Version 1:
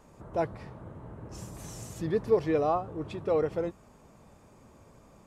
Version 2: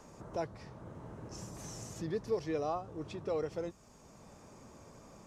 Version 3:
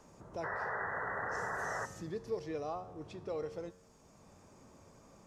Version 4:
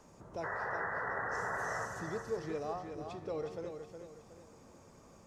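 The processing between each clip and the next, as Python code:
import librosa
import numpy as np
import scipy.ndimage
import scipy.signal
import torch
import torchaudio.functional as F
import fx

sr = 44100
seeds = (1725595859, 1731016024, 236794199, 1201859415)

y1 = fx.peak_eq(x, sr, hz=5800.0, db=10.5, octaves=0.91)
y1 = fx.band_squash(y1, sr, depth_pct=40)
y1 = y1 * librosa.db_to_amplitude(-7.5)
y2 = fx.spec_paint(y1, sr, seeds[0], shape='noise', start_s=0.43, length_s=1.43, low_hz=380.0, high_hz=2000.0, level_db=-34.0)
y2 = fx.comb_fb(y2, sr, f0_hz=91.0, decay_s=0.99, harmonics='all', damping=0.0, mix_pct=60)
y2 = y2 * librosa.db_to_amplitude(2.5)
y3 = fx.echo_feedback(y2, sr, ms=366, feedback_pct=38, wet_db=-7)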